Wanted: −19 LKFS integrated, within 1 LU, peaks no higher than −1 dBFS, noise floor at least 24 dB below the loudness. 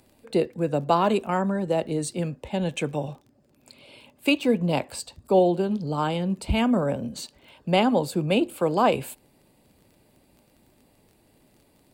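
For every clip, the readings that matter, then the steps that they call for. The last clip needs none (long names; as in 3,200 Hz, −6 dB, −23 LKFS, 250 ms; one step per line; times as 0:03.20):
crackle rate 20 per second; integrated loudness −25.0 LKFS; sample peak −8.0 dBFS; target loudness −19.0 LKFS
→ click removal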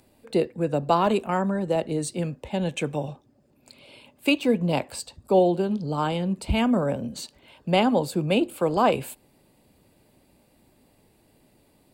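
crackle rate 0.17 per second; integrated loudness −25.0 LKFS; sample peak −8.0 dBFS; target loudness −19.0 LKFS
→ level +6 dB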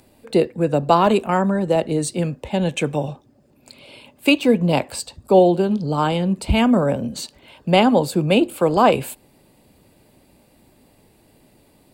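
integrated loudness −19.0 LKFS; sample peak −2.0 dBFS; background noise floor −56 dBFS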